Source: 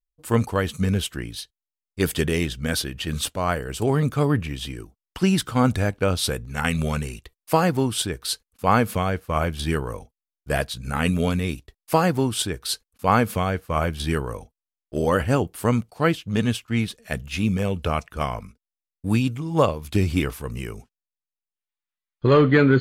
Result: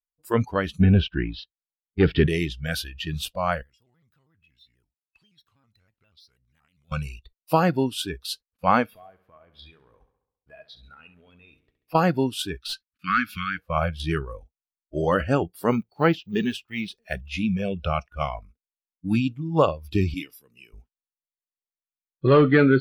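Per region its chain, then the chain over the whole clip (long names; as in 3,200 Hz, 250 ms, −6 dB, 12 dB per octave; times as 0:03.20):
0:00.80–0:02.27: leveller curve on the samples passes 2 + high-frequency loss of the air 270 metres
0:03.62–0:06.92: guitar amp tone stack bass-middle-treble 5-5-5 + downward compressor 5 to 1, threshold −46 dBFS + pitch modulation by a square or saw wave square 6.2 Hz, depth 160 cents
0:08.86–0:11.95: bass and treble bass −6 dB, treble −8 dB + downward compressor 4 to 1, threshold −38 dBFS + repeating echo 68 ms, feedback 59%, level −10.5 dB
0:12.57–0:13.58: elliptic band-stop filter 320–1,300 Hz + high-shelf EQ 2,000 Hz +5.5 dB + mid-hump overdrive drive 12 dB, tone 1,500 Hz, clips at −7 dBFS
0:15.69–0:17.16: one scale factor per block 7 bits + hollow resonant body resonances 390/830 Hz, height 9 dB, ringing for 65 ms
0:20.14–0:20.73: high-pass filter 290 Hz + parametric band 880 Hz −13 dB 2.3 octaves
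whole clip: noise reduction from a noise print of the clip's start 18 dB; parametric band 8,300 Hz −10.5 dB 1.3 octaves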